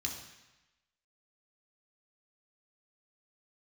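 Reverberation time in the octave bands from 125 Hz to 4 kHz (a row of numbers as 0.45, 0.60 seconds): 1.0, 0.95, 0.95, 1.1, 1.1, 1.1 seconds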